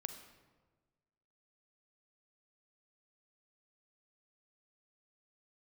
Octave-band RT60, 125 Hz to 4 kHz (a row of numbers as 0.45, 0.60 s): 1.6, 1.5, 1.5, 1.3, 1.0, 0.80 s